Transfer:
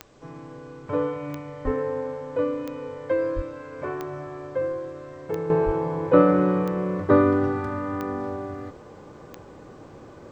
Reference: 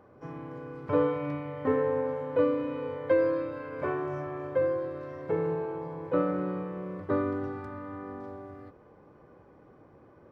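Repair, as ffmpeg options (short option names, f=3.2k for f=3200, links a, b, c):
-filter_complex "[0:a]adeclick=t=4,asplit=3[a][b][c];[a]afade=t=out:st=1.64:d=0.02[d];[b]highpass=f=140:w=0.5412,highpass=f=140:w=1.3066,afade=t=in:st=1.64:d=0.02,afade=t=out:st=1.76:d=0.02[e];[c]afade=t=in:st=1.76:d=0.02[f];[d][e][f]amix=inputs=3:normalize=0,asplit=3[g][h][i];[g]afade=t=out:st=3.35:d=0.02[j];[h]highpass=f=140:w=0.5412,highpass=f=140:w=1.3066,afade=t=in:st=3.35:d=0.02,afade=t=out:st=3.47:d=0.02[k];[i]afade=t=in:st=3.47:d=0.02[l];[j][k][l]amix=inputs=3:normalize=0,asplit=3[m][n][o];[m]afade=t=out:st=5.65:d=0.02[p];[n]highpass=f=140:w=0.5412,highpass=f=140:w=1.3066,afade=t=in:st=5.65:d=0.02,afade=t=out:st=5.77:d=0.02[q];[o]afade=t=in:st=5.77:d=0.02[r];[p][q][r]amix=inputs=3:normalize=0,agate=range=-21dB:threshold=-37dB,asetnsamples=n=441:p=0,asendcmd='5.5 volume volume -11dB',volume=0dB"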